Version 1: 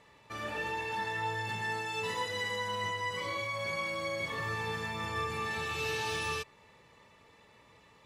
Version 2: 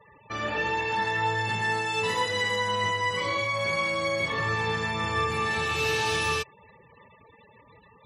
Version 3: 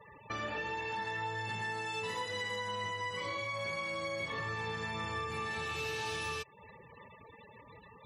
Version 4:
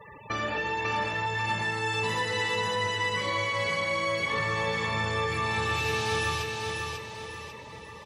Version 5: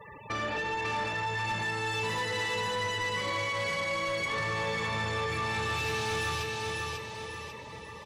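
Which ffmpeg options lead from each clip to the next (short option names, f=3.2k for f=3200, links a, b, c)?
-af "afftfilt=real='re*gte(hypot(re,im),0.00224)':imag='im*gte(hypot(re,im),0.00224)':win_size=1024:overlap=0.75,volume=8dB"
-af "acompressor=threshold=-37dB:ratio=4"
-af "aecho=1:1:544|1088|1632|2176|2720:0.631|0.271|0.117|0.0502|0.0216,volume=7.5dB"
-af "asoftclip=type=tanh:threshold=-26.5dB"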